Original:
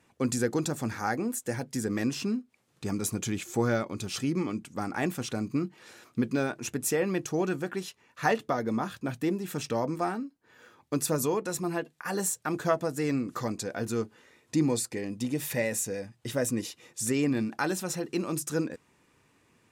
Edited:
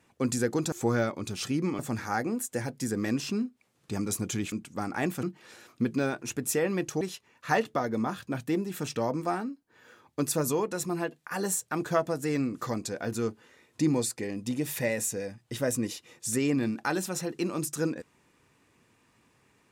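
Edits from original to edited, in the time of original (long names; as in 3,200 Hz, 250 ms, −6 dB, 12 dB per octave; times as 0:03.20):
0:03.45–0:04.52: move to 0:00.72
0:05.23–0:05.60: remove
0:07.38–0:07.75: remove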